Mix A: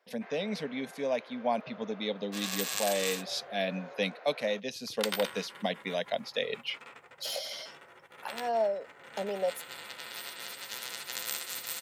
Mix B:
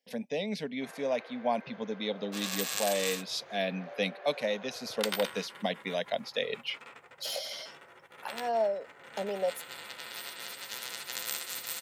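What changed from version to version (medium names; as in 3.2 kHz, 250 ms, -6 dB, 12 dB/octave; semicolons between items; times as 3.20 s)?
first sound: entry +0.60 s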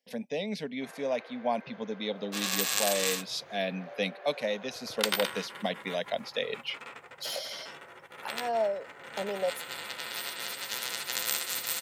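second sound +5.0 dB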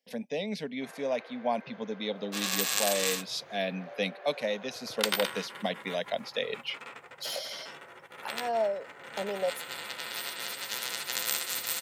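master: add high-pass 75 Hz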